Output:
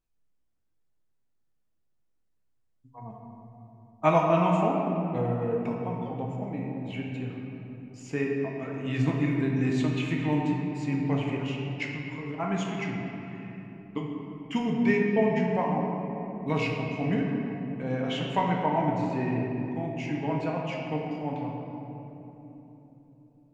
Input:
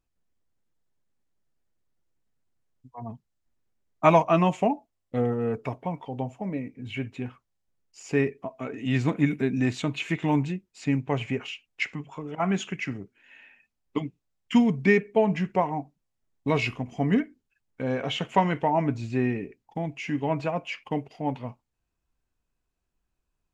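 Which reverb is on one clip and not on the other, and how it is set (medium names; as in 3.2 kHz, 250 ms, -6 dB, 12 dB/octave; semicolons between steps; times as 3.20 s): simulated room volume 210 m³, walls hard, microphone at 0.55 m; trim -6 dB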